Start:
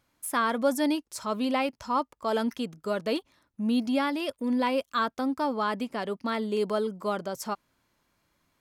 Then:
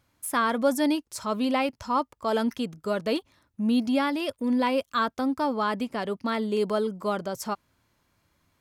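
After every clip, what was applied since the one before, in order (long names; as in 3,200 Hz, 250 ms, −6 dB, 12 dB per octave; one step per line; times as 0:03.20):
parametric band 89 Hz +8 dB 1.1 octaves
level +1.5 dB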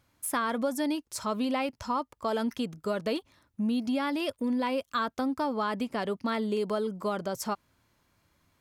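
downward compressor 5 to 1, threshold −26 dBFS, peak gain reduction 8 dB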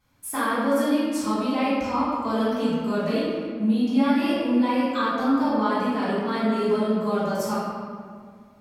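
convolution reverb RT60 2.0 s, pre-delay 3 ms, DRR −13 dB
level −7.5 dB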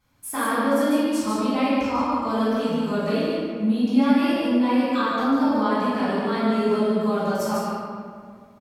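single-tap delay 146 ms −4 dB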